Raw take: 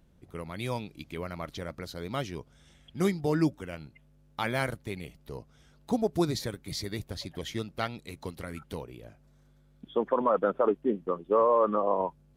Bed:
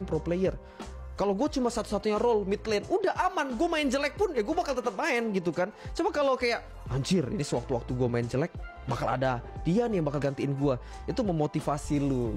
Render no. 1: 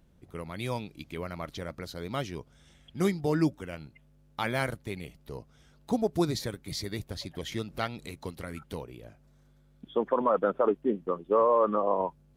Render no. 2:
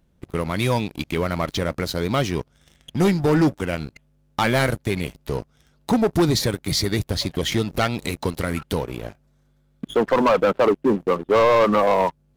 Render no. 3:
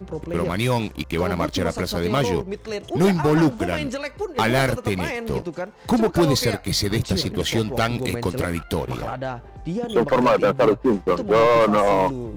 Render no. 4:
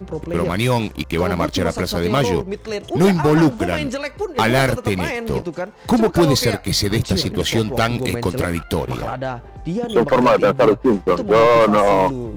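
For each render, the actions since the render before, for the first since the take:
7.52–8.11 upward compressor, threshold -34 dBFS
sample leveller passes 3; in parallel at -1 dB: compressor, threshold -30 dBFS, peak gain reduction 13 dB
add bed -1 dB
gain +3.5 dB

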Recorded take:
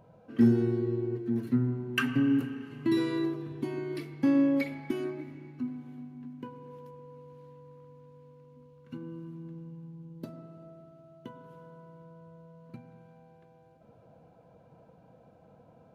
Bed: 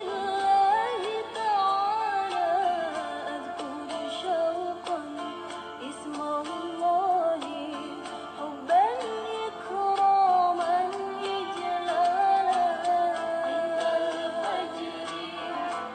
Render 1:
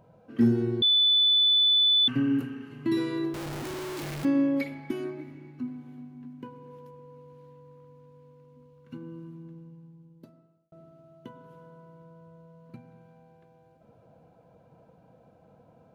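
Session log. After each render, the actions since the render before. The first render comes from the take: 0.82–2.08 bleep 3490 Hz -18 dBFS; 3.34–4.25 infinite clipping; 9.22–10.72 fade out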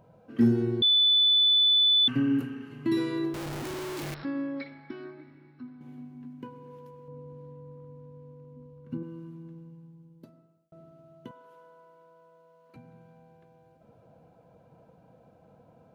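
4.14–5.81 rippled Chebyshev low-pass 5500 Hz, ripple 9 dB; 7.08–9.03 tilt shelf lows +7.5 dB; 11.31–12.76 HPF 510 Hz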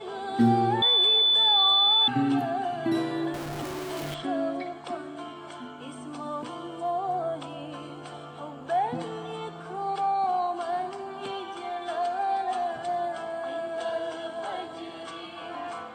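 add bed -4.5 dB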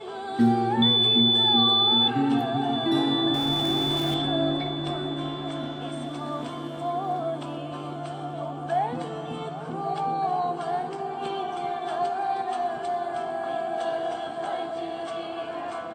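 doubler 21 ms -13 dB; repeats that get brighter 0.382 s, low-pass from 200 Hz, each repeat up 1 oct, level 0 dB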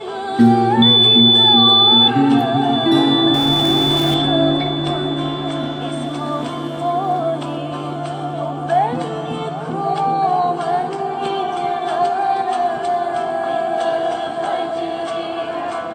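gain +9.5 dB; limiter -2 dBFS, peak gain reduction 1.5 dB

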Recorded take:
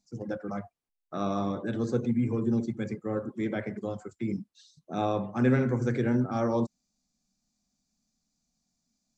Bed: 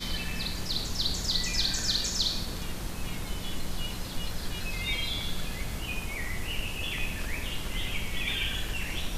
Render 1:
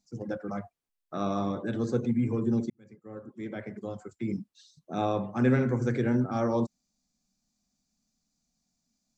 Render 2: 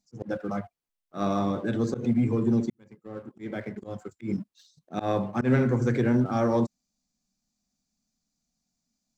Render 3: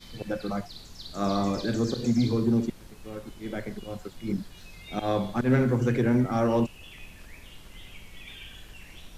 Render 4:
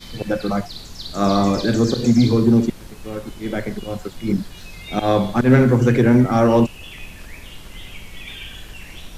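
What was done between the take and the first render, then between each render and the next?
2.7–4.38 fade in
sample leveller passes 1; auto swell 0.102 s
add bed -13.5 dB
gain +9.5 dB

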